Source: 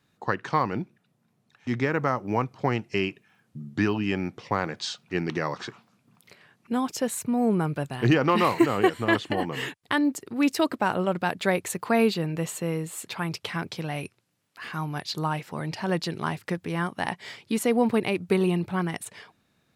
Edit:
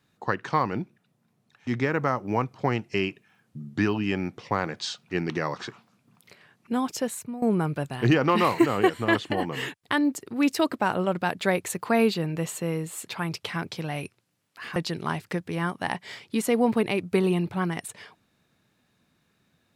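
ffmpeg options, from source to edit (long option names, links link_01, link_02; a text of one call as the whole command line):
ffmpeg -i in.wav -filter_complex "[0:a]asplit=3[link_01][link_02][link_03];[link_01]atrim=end=7.42,asetpts=PTS-STARTPTS,afade=type=out:start_time=6.97:duration=0.45:silence=0.16788[link_04];[link_02]atrim=start=7.42:end=14.762,asetpts=PTS-STARTPTS,afade=type=in:duration=0.004:curve=hsin:silence=0.16788[link_05];[link_03]atrim=start=15.928[link_06];[link_04][link_05]concat=n=2:v=0:a=1[link_07];[link_07][link_06]acrossfade=duration=0.004:curve1=hsin:curve2=hsin" out.wav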